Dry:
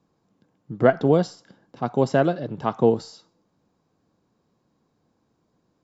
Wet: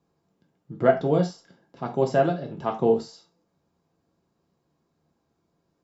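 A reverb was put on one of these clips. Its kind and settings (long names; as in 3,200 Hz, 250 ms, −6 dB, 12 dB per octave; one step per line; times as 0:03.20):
reverb whose tail is shaped and stops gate 110 ms falling, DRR 2 dB
level −5 dB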